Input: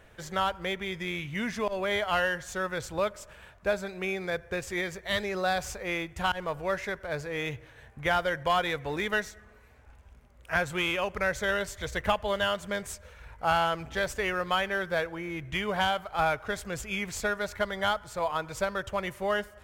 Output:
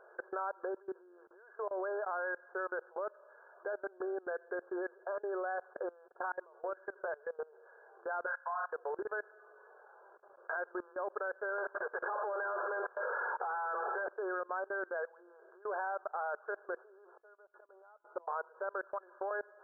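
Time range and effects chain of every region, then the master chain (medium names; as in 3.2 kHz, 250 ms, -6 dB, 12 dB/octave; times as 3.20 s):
6.41–7.40 s: compression 16:1, threshold -37 dBFS + hum notches 60/120/180/240/300/360/420/480 Hz
8.26–8.73 s: steep high-pass 750 Hz + flutter echo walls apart 5.4 m, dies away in 0.4 s
11.58–14.10 s: overdrive pedal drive 34 dB, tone 3.6 kHz, clips at -13.5 dBFS + band-stop 640 Hz, Q 13 + compression, threshold -24 dBFS
17.07–18.28 s: inverted gate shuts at -26 dBFS, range -27 dB + band-stop 1.6 kHz, Q 7.2
18.84–19.31 s: tilt EQ +4 dB/octave + compression 4:1, threshold -36 dBFS + high-pass 130 Hz
whole clip: compression 2.5:1, threshold -43 dBFS; FFT band-pass 350–1700 Hz; level held to a coarse grid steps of 23 dB; trim +9.5 dB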